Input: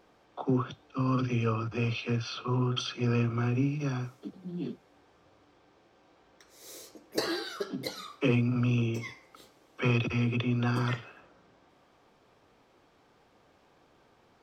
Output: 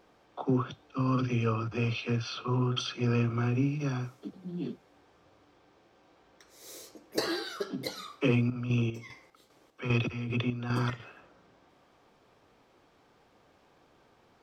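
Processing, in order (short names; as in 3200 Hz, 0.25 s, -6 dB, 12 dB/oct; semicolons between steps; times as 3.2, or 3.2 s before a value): 8.3–11 chopper 2.5 Hz, depth 60%, duty 50%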